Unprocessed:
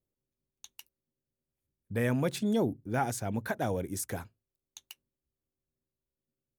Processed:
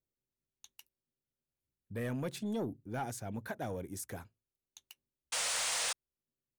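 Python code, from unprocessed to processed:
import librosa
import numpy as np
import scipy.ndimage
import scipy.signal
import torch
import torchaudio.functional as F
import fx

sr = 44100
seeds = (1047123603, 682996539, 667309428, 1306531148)

y = fx.spec_paint(x, sr, seeds[0], shape='noise', start_s=5.32, length_s=0.61, low_hz=450.0, high_hz=9900.0, level_db=-25.0)
y = 10.0 ** (-22.0 / 20.0) * np.tanh(y / 10.0 ** (-22.0 / 20.0))
y = F.gain(torch.from_numpy(y), -6.5).numpy()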